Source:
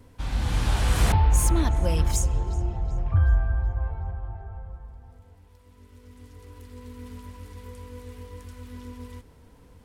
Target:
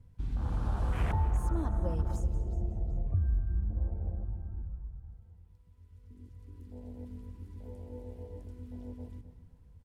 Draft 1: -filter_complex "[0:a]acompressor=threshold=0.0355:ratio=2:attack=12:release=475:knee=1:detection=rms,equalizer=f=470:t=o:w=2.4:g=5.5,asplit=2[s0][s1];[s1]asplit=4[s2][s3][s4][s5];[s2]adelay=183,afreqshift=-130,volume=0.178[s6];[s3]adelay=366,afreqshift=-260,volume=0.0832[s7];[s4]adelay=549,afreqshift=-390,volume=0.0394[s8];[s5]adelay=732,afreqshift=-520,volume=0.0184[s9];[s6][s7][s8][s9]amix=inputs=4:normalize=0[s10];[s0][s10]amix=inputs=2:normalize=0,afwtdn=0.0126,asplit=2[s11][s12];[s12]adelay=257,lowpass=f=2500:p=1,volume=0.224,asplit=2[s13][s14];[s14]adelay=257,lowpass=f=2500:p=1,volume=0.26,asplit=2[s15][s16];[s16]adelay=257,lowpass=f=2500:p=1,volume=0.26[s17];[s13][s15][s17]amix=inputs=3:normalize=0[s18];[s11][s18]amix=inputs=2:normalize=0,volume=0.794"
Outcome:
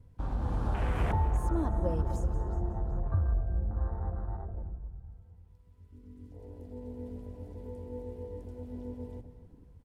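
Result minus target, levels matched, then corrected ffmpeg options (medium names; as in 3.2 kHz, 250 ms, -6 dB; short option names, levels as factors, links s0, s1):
500 Hz band +5.0 dB
-filter_complex "[0:a]acompressor=threshold=0.0355:ratio=2:attack=12:release=475:knee=1:detection=rms,asplit=2[s0][s1];[s1]asplit=4[s2][s3][s4][s5];[s2]adelay=183,afreqshift=-130,volume=0.178[s6];[s3]adelay=366,afreqshift=-260,volume=0.0832[s7];[s4]adelay=549,afreqshift=-390,volume=0.0394[s8];[s5]adelay=732,afreqshift=-520,volume=0.0184[s9];[s6][s7][s8][s9]amix=inputs=4:normalize=0[s10];[s0][s10]amix=inputs=2:normalize=0,afwtdn=0.0126,asplit=2[s11][s12];[s12]adelay=257,lowpass=f=2500:p=1,volume=0.224,asplit=2[s13][s14];[s14]adelay=257,lowpass=f=2500:p=1,volume=0.26,asplit=2[s15][s16];[s16]adelay=257,lowpass=f=2500:p=1,volume=0.26[s17];[s13][s15][s17]amix=inputs=3:normalize=0[s18];[s11][s18]amix=inputs=2:normalize=0,volume=0.794"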